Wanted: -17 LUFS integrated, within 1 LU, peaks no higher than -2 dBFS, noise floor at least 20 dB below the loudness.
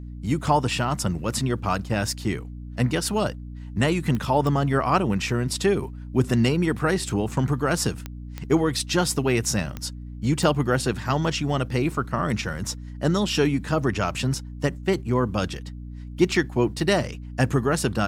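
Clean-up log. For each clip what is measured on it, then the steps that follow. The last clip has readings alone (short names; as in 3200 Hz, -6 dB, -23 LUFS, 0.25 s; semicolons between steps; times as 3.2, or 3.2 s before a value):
clicks 6; hum 60 Hz; harmonics up to 300 Hz; hum level -34 dBFS; loudness -24.5 LUFS; peak -6.5 dBFS; loudness target -17.0 LUFS
-> de-click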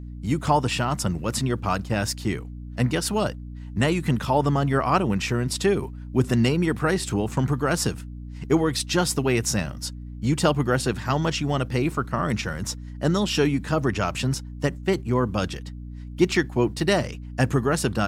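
clicks 0; hum 60 Hz; harmonics up to 180 Hz; hum level -34 dBFS
-> notches 60/120/180 Hz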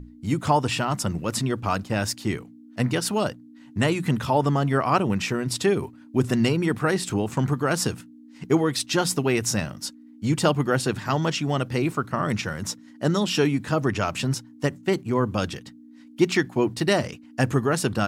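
hum none; loudness -24.5 LUFS; peak -6.5 dBFS; loudness target -17.0 LUFS
-> gain +7.5 dB; limiter -2 dBFS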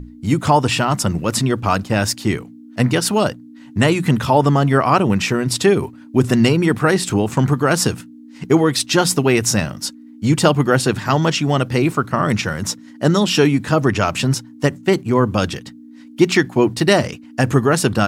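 loudness -17.0 LUFS; peak -2.0 dBFS; noise floor -41 dBFS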